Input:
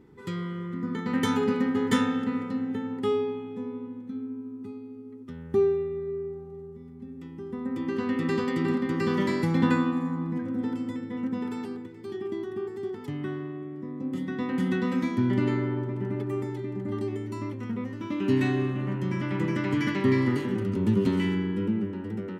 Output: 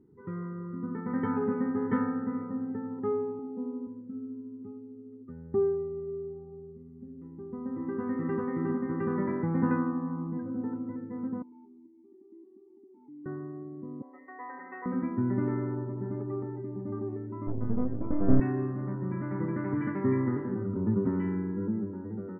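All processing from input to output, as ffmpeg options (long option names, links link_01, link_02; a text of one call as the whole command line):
ffmpeg -i in.wav -filter_complex "[0:a]asettb=1/sr,asplit=3[link_01][link_02][link_03];[link_01]atrim=end=3.394[link_04];[link_02]atrim=start=3.39:end=3.87,asetpts=PTS-STARTPTS,afade=type=in:duration=0.004:curve=qsin,afade=type=out:start_time=0.476:duration=0.004:curve=qsin,highpass=frequency=280:width_type=q:width=2.4,equalizer=frequency=3600:width=0.47:gain=-3.5,aecho=1:1:1.4:0.37,atrim=end_sample=21168[link_05];[link_03]atrim=start=3.866[link_06];[link_04][link_05]acrossfade=duration=0.004:curve1=hsin:curve2=qsin[link_07];[link_07][link_06]acrossfade=duration=0.004:curve1=qsin:curve2=hsin,asettb=1/sr,asplit=3[link_08][link_09][link_10];[link_08]atrim=end=11.424[link_11];[link_09]atrim=start=11.42:end=13.26,asetpts=PTS-STARTPTS,afade=type=in:duration=0.004:curve=qsin,afade=type=out:start_time=1.836:duration=0.004:curve=qsin,acompressor=threshold=-37dB:ratio=3:attack=3.2:release=140:knee=1:detection=peak,asplit=3[link_12][link_13][link_14];[link_12]bandpass=frequency=300:width_type=q:width=8,volume=0dB[link_15];[link_13]bandpass=frequency=870:width_type=q:width=8,volume=-6dB[link_16];[link_14]bandpass=frequency=2240:width_type=q:width=8,volume=-9dB[link_17];[link_15][link_16][link_17]amix=inputs=3:normalize=0[link_18];[link_10]atrim=start=13.256[link_19];[link_11][link_18]acrossfade=duration=0.004:curve1=hsin:curve2=qsin[link_20];[link_20][link_19]acrossfade=duration=0.004:curve1=qsin:curve2=hsin,asettb=1/sr,asplit=3[link_21][link_22][link_23];[link_21]atrim=end=14.024[link_24];[link_22]atrim=start=14.02:end=14.86,asetpts=PTS-STARTPTS,afade=type=in:duration=0.004:curve=qsin,afade=type=out:start_time=0.836:duration=0.004:curve=qsin,highpass=frequency=490:width=0.5412,highpass=frequency=490:width=1.3066,equalizer=frequency=550:width_type=q:width=4:gain=-4,equalizer=frequency=780:width_type=q:width=4:gain=4,equalizer=frequency=1400:width_type=q:width=4:gain=-7,equalizer=frequency=2000:width_type=q:width=4:gain=4,lowpass=frequency=2400:width=0.5412,lowpass=frequency=2400:width=1.3066,aecho=1:1:7:0.68,atrim=end_sample=37044[link_25];[link_23]atrim=start=14.856[link_26];[link_24][link_25]acrossfade=duration=0.004:curve1=hsin:curve2=qsin[link_27];[link_27][link_26]acrossfade=duration=0.004:curve1=qsin:curve2=hsin,asettb=1/sr,asplit=3[link_28][link_29][link_30];[link_28]atrim=end=17.474[link_31];[link_29]atrim=start=17.47:end=18.4,asetpts=PTS-STARTPTS,afade=type=in:duration=0.004:curve=qsin,afade=type=out:start_time=0.926:duration=0.004:curve=qsin,aeval=exprs='max(val(0),0)':channel_layout=same,lowshelf=frequency=480:gain=12,asplit=2[link_32][link_33];[link_33]adelay=16,volume=-7.5dB[link_34];[link_32][link_34]amix=inputs=2:normalize=0,atrim=end_sample=41013[link_35];[link_30]atrim=start=18.396[link_36];[link_31][link_35]acrossfade=duration=0.004:curve1=hsin:curve2=qsin[link_37];[link_37][link_36]acrossfade=duration=0.004:curve1=qsin:curve2=hsin,lowpass=frequency=1600:width=0.5412,lowpass=frequency=1600:width=1.3066,afftdn=noise_reduction=12:noise_floor=-49,volume=-4dB" out.wav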